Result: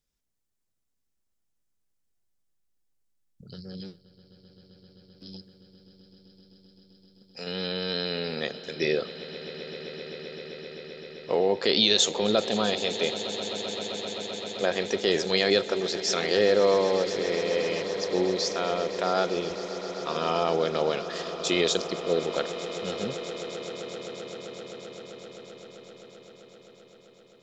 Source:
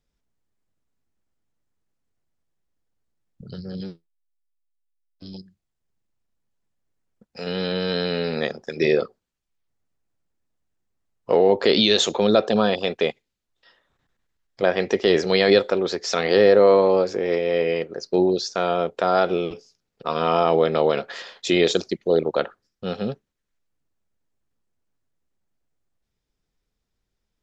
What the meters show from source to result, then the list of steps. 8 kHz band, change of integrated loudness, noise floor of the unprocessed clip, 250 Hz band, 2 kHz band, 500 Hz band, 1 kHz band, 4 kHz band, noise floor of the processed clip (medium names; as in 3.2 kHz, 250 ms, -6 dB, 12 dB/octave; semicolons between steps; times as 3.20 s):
no reading, -6.5 dB, -80 dBFS, -6.5 dB, -4.0 dB, -6.5 dB, -6.0 dB, -0.5 dB, -75 dBFS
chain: treble shelf 3.7 kHz +12 dB; on a send: echo with a slow build-up 130 ms, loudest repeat 8, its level -18 dB; on the sum: trim -7.5 dB